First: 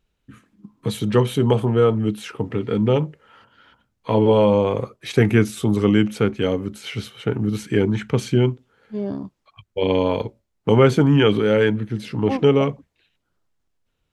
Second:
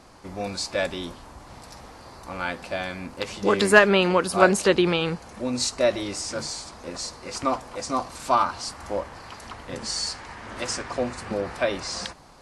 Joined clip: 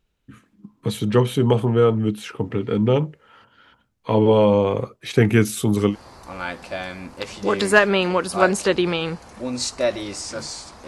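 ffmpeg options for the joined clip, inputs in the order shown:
-filter_complex "[0:a]asettb=1/sr,asplit=3[a][b][c];[a]atrim=end=5.324[d];[b]atrim=start=5.32:end=5.96,asetpts=PTS-STARTPTS,afade=t=in:d=0.004:c=qsin,afade=t=out:st=0.636:d=0.004:c=qsin,aemphasis=mode=production:type=cd[e];[c]atrim=start=5.956[f];[d][e]acrossfade=d=0.004:c1=hsin:c2=qsin[g];[g][f]acrossfade=d=0.004:c1=qsin:c2=hsin,apad=whole_dur=10.87,atrim=end=10.87,atrim=end=5.96,asetpts=PTS-STARTPTS[h];[1:a]atrim=start=1.86:end=6.87,asetpts=PTS-STARTPTS[i];[h][i]acrossfade=d=0.1:c1=tri:c2=tri"

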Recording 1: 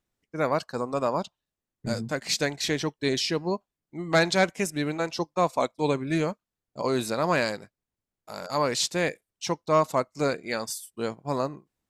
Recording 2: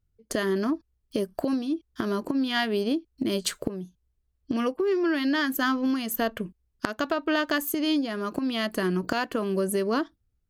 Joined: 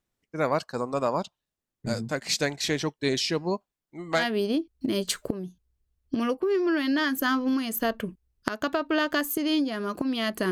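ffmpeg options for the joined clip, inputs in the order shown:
-filter_complex "[0:a]asettb=1/sr,asplit=3[a][b][c];[a]atrim=end=3.724[d];[b]atrim=start=3.72:end=4.27,asetpts=PTS-STARTPTS,afade=t=in:d=0.004:c=qsin,afade=t=out:st=0.546:d=0.004:c=qsin,equalizer=f=140:t=o:w=2.6:g=-6.5[e];[c]atrim=start=4.266[f];[d][e]acrossfade=d=0.004:c1=hsin:c2=qsin[g];[g][f]acrossfade=d=0.004:c1=qsin:c2=hsin,apad=whole_dur=10.51,atrim=end=10.51,atrim=end=4.27,asetpts=PTS-STARTPTS[h];[1:a]atrim=start=2.5:end=8.88,asetpts=PTS-STARTPTS[i];[h][i]acrossfade=d=0.14:c1=tri:c2=tri"

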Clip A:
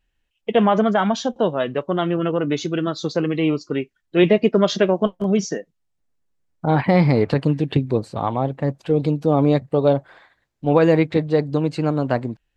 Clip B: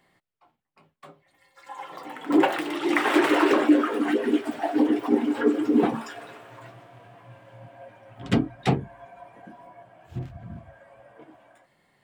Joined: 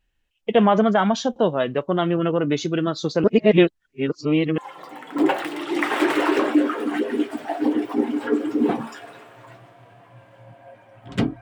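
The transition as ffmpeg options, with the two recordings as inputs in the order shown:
-filter_complex "[0:a]apad=whole_dur=11.41,atrim=end=11.41,asplit=2[a][b];[a]atrim=end=3.242[c];[b]atrim=start=3.238:end=4.582,asetpts=PTS-STARTPTS,areverse[d];[1:a]atrim=start=1.718:end=8.55[e];[c][d]acrossfade=d=0.004:c1=hsin:c2=hsin[f];[f][e]acrossfade=d=0.004:c1=hsin:c2=hsin"

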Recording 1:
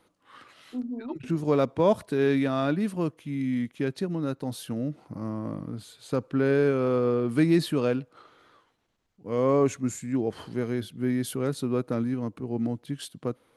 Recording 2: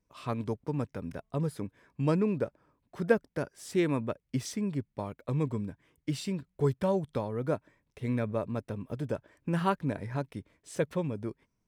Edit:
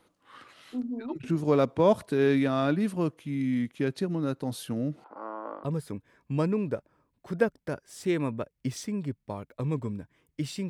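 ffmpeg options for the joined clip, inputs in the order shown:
-filter_complex "[0:a]asettb=1/sr,asplit=3[a][b][c];[a]atrim=end=5.044[d];[b]atrim=start=5.04:end=5.64,asetpts=PTS-STARTPTS,afade=t=in:d=0.004:c=qsin,afade=t=out:st=0.596:d=0.004:c=qsin,highpass=f=400:w=0.5412,highpass=f=400:w=1.3066,equalizer=f=860:t=q:w=4:g=9,equalizer=f=1.4k:t=q:w=4:g=10,equalizer=f=2.2k:t=q:w=4:g=-7,lowpass=f=3.1k:w=0.5412,lowpass=f=3.1k:w=1.3066[e];[c]atrim=start=5.636[f];[d][e]acrossfade=d=0.004:c1=hsin:c2=qsin[g];[g][f]acrossfade=d=0.004:c1=qsin:c2=hsin,apad=whole_dur=10.69,atrim=end=10.69,atrim=end=5.642[h];[1:a]atrim=start=1.328:end=6.38[i];[h][i]acrossfade=d=0.004:c1=hsin:c2=hsin"

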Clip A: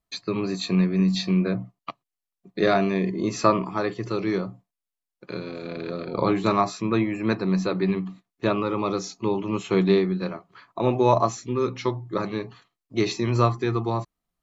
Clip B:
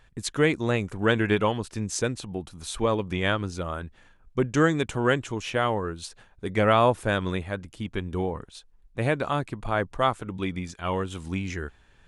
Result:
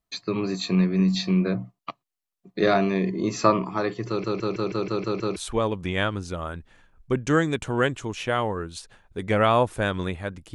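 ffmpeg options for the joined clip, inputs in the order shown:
-filter_complex "[0:a]apad=whole_dur=10.54,atrim=end=10.54,asplit=8[a][b][c][d][e][f][g][h];[a]atrim=end=4.242[i];[b]atrim=start=4.078:end=4.242[j];[c]atrim=start=4.078:end=4.242[k];[d]atrim=start=4.078:end=4.242[l];[e]atrim=start=4.078:end=4.242[m];[f]atrim=start=4.078:end=4.242[n];[g]atrim=start=4.078:end=4.242[o];[h]atrim=start=4.078:end=4.242[p];[1:a]atrim=start=2.628:end=7.81[q];[i][j]acrossfade=d=0.004:c1=hsin:c2=hsin[r];[r][k]acrossfade=d=0.004:c1=hsin:c2=hsin[s];[s][l]acrossfade=d=0.004:c1=hsin:c2=hsin[t];[t][m]acrossfade=d=0.004:c1=hsin:c2=hsin[u];[u][n]acrossfade=d=0.004:c1=hsin:c2=hsin[v];[v][o]acrossfade=d=0.004:c1=hsin:c2=hsin[w];[w][p]acrossfade=d=0.004:c1=hsin:c2=hsin[x];[x][q]acrossfade=d=0.004:c1=hsin:c2=hsin"

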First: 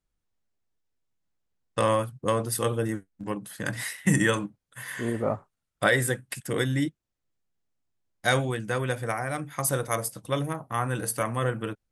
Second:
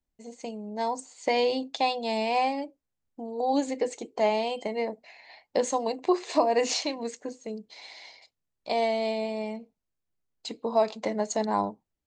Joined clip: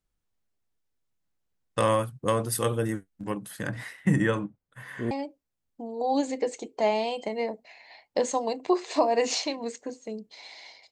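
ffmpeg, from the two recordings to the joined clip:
-filter_complex "[0:a]asplit=3[a][b][c];[a]afade=t=out:st=3.65:d=0.02[d];[b]lowpass=f=1.3k:p=1,afade=t=in:st=3.65:d=0.02,afade=t=out:st=5.11:d=0.02[e];[c]afade=t=in:st=5.11:d=0.02[f];[d][e][f]amix=inputs=3:normalize=0,apad=whole_dur=10.91,atrim=end=10.91,atrim=end=5.112[g];[1:a]atrim=start=2.498:end=8.3[h];[g][h]acrossfade=d=0.004:c1=hsin:c2=hsin"

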